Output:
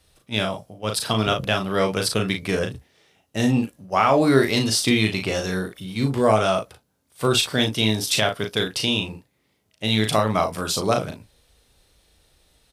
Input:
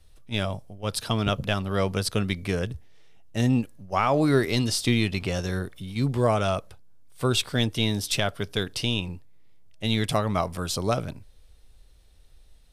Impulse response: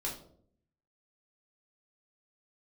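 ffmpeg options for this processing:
-af "highpass=f=190:p=1,aecho=1:1:37|54:0.562|0.168,volume=1.68"

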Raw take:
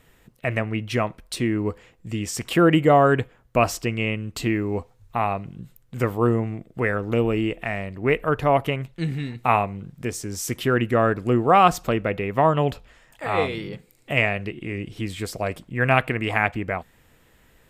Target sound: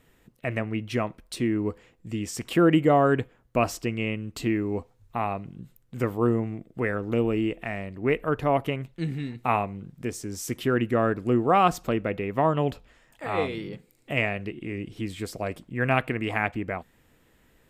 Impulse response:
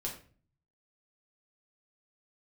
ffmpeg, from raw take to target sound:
-af "equalizer=f=280:w=1.1:g=4.5,volume=0.531"

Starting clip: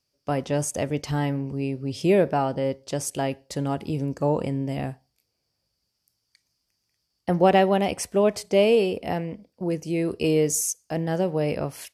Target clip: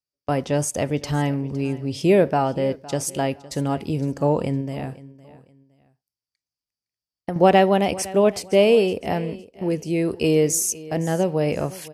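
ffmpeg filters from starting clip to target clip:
-filter_complex "[0:a]agate=range=0.0891:threshold=0.0112:ratio=16:detection=peak,asettb=1/sr,asplit=3[s0][s1][s2];[s0]atrim=end=4.604[s3];[s1]atrim=start=4.6:end=7.36,asetpts=PTS-STARTPTS,afade=t=in:d=0.004:c=qsin,afade=t=out:st=2.756:d=0.004:c=qsin,acompressor=threshold=0.0398:ratio=6[s4];[s2]atrim=start=7.356[s5];[s3][s4]acrossfade=d=0.004:c1=hsin:c2=qsin[s6];[s6][s5]acrossfade=d=0.004:c1=qsin:c2=hsin,asplit=2[s7][s8];[s8]aecho=0:1:511|1022:0.112|0.0314[s9];[s7][s9]amix=inputs=2:normalize=0,volume=1.41"

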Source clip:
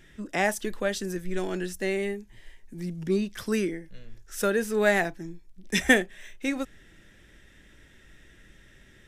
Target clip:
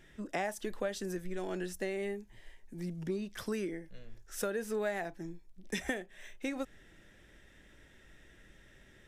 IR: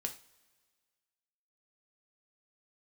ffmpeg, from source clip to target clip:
-af "acompressor=threshold=0.0398:ratio=8,equalizer=f=680:t=o:w=1.5:g=5,volume=0.531"

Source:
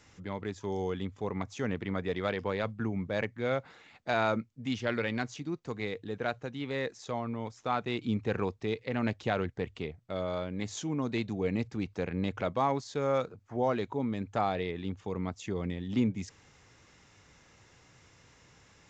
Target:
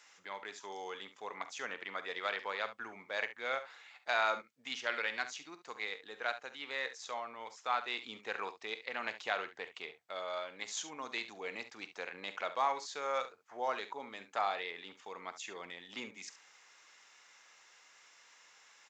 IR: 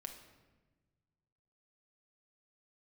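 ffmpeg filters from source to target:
-af "highpass=950,aecho=1:1:46|70:0.188|0.211,volume=1.12"

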